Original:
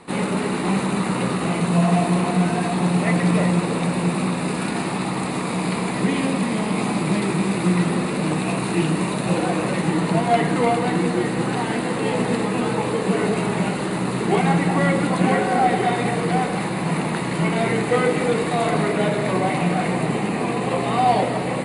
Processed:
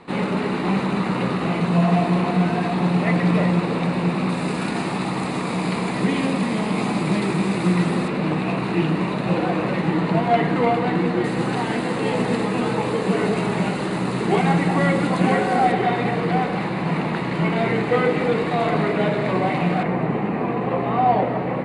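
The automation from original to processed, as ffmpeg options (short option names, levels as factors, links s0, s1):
-af "asetnsamples=n=441:p=0,asendcmd='4.29 lowpass f 7200;8.08 lowpass f 3600;11.24 lowpass f 7200;15.72 lowpass f 3900;19.83 lowpass f 1900',lowpass=4400"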